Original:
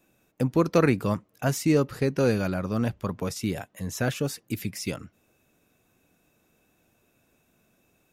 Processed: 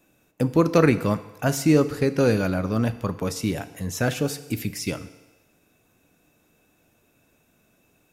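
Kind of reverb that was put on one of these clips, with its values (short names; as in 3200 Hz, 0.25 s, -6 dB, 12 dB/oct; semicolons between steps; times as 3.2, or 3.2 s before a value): FDN reverb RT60 1.1 s, low-frequency decay 0.75×, high-frequency decay 1×, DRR 11.5 dB; gain +3 dB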